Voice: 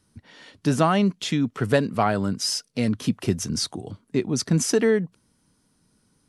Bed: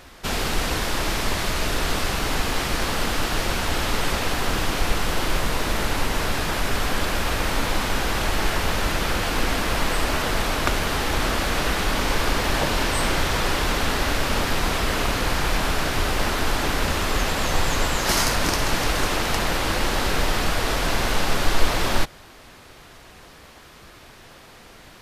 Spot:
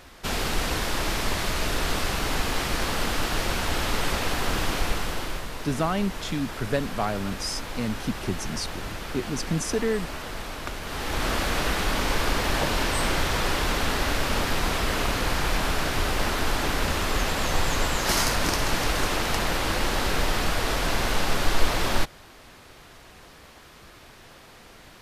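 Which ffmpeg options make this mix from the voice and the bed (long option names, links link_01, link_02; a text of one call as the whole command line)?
ffmpeg -i stem1.wav -i stem2.wav -filter_complex "[0:a]adelay=5000,volume=-6dB[link_01];[1:a]volume=6.5dB,afade=type=out:start_time=4.73:duration=0.74:silence=0.354813,afade=type=in:start_time=10.82:duration=0.51:silence=0.354813[link_02];[link_01][link_02]amix=inputs=2:normalize=0" out.wav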